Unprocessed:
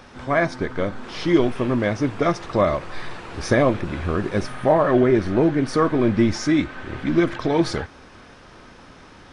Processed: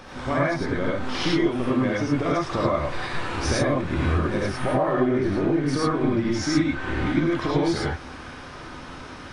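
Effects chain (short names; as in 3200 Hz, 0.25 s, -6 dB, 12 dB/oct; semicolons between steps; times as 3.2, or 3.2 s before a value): compressor 6:1, threshold -26 dBFS, peak gain reduction 14 dB; non-linear reverb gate 0.13 s rising, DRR -4.5 dB; gain +1 dB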